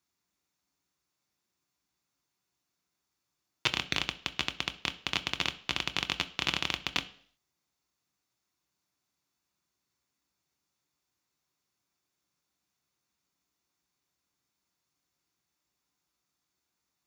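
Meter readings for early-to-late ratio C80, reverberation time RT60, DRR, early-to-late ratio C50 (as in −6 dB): 20.5 dB, 0.55 s, 8.5 dB, 17.0 dB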